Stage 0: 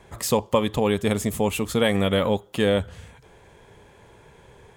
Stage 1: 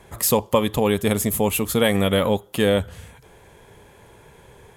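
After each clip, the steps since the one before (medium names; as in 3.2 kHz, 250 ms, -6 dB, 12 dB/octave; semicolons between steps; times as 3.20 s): peaking EQ 12 kHz +13 dB 0.5 oct; trim +2 dB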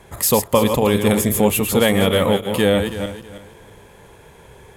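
backward echo that repeats 161 ms, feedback 48%, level -6.5 dB; trim +2.5 dB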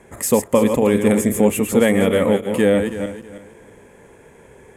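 ten-band graphic EQ 250 Hz +10 dB, 500 Hz +6 dB, 2 kHz +8 dB, 4 kHz -8 dB, 8 kHz +10 dB, 16 kHz -6 dB; trim -7 dB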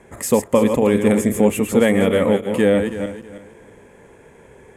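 treble shelf 9 kHz -6.5 dB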